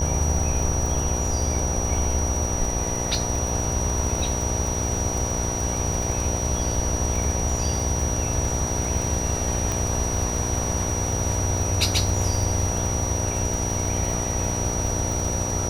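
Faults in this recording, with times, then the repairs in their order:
buzz 60 Hz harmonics 16 -29 dBFS
crackle 29 per s -27 dBFS
whine 5.8 kHz -28 dBFS
9.72 s: pop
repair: de-click; de-hum 60 Hz, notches 16; band-stop 5.8 kHz, Q 30

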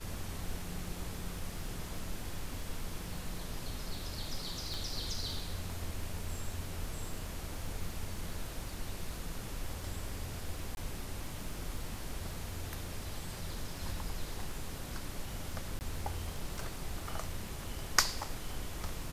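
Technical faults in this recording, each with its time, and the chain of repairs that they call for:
crackle 48 per s -44 dBFS
4.74 s: pop
10.75–10.77 s: dropout 21 ms
15.79–15.81 s: dropout 19 ms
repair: de-click; interpolate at 10.75 s, 21 ms; interpolate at 15.79 s, 19 ms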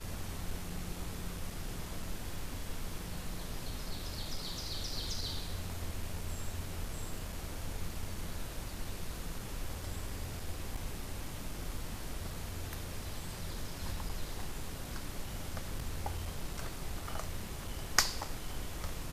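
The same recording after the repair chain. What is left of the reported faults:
4.74 s: pop

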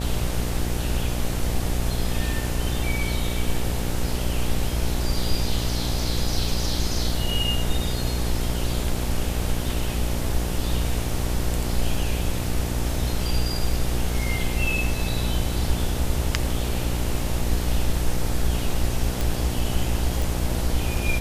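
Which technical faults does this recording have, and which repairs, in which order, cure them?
buzz 60 Hz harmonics 15 -27 dBFS
19.21 s: pop
20.22 s: pop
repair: de-click; de-hum 60 Hz, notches 15

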